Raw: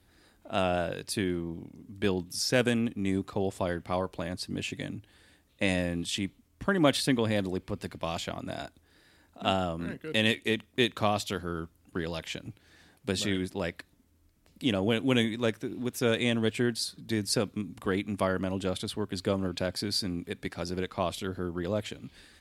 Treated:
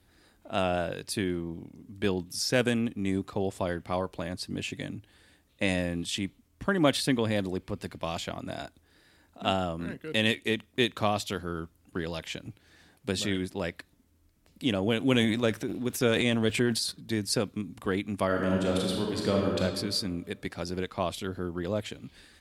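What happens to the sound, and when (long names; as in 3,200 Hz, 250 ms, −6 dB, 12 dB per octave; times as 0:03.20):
0:15.00–0:16.92: transient designer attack +3 dB, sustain +9 dB
0:18.26–0:19.59: thrown reverb, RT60 1.6 s, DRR −1.5 dB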